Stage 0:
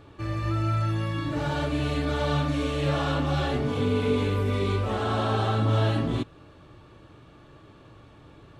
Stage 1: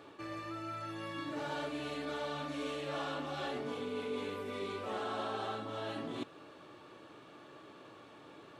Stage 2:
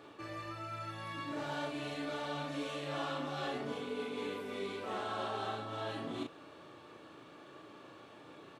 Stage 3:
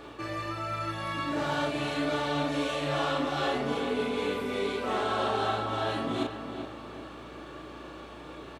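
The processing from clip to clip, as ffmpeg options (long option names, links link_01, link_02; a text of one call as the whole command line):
ffmpeg -i in.wav -af "areverse,acompressor=threshold=-33dB:ratio=6,areverse,highpass=290" out.wav
ffmpeg -i in.wav -filter_complex "[0:a]asplit=2[link_01][link_02];[link_02]adelay=35,volume=-4dB[link_03];[link_01][link_03]amix=inputs=2:normalize=0,volume=-1dB" out.wav
ffmpeg -i in.wav -filter_complex "[0:a]aeval=exprs='val(0)+0.000501*(sin(2*PI*60*n/s)+sin(2*PI*2*60*n/s)/2+sin(2*PI*3*60*n/s)/3+sin(2*PI*4*60*n/s)/4+sin(2*PI*5*60*n/s)/5)':channel_layout=same,asplit=2[link_01][link_02];[link_02]adelay=384,lowpass=frequency=2700:poles=1,volume=-8dB,asplit=2[link_03][link_04];[link_04]adelay=384,lowpass=frequency=2700:poles=1,volume=0.46,asplit=2[link_05][link_06];[link_06]adelay=384,lowpass=frequency=2700:poles=1,volume=0.46,asplit=2[link_07][link_08];[link_08]adelay=384,lowpass=frequency=2700:poles=1,volume=0.46,asplit=2[link_09][link_10];[link_10]adelay=384,lowpass=frequency=2700:poles=1,volume=0.46[link_11];[link_01][link_03][link_05][link_07][link_09][link_11]amix=inputs=6:normalize=0,volume=9dB" out.wav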